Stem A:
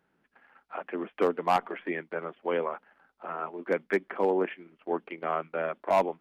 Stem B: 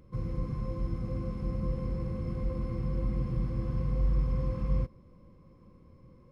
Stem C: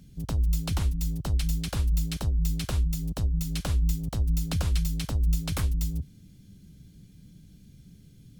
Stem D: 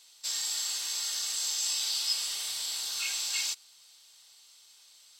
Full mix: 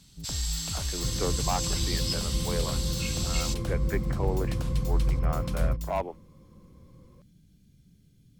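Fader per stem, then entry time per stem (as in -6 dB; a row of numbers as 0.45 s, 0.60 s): -6.0 dB, +1.5 dB, -7.5 dB, -2.5 dB; 0.00 s, 0.90 s, 0.00 s, 0.00 s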